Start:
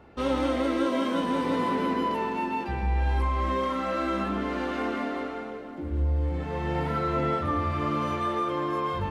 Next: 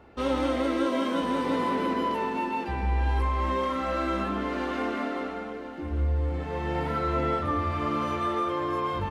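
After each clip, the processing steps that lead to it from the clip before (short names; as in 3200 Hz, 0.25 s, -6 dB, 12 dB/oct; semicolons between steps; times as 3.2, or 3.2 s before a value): bell 150 Hz -4 dB 0.77 oct; echo 1.043 s -15.5 dB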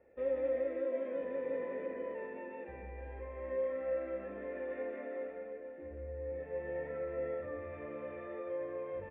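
in parallel at +3 dB: limiter -21.5 dBFS, peak gain reduction 6.5 dB; on the sum: vocal tract filter e; gain -8 dB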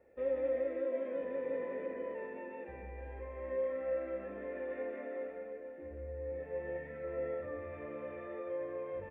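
spectral gain 6.78–7.04, 290–1500 Hz -6 dB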